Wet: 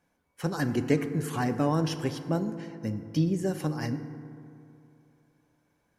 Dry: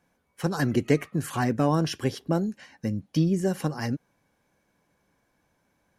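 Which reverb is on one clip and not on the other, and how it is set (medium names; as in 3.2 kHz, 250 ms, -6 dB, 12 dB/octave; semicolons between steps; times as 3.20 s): FDN reverb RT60 2.7 s, high-frequency decay 0.35×, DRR 9 dB; trim -3.5 dB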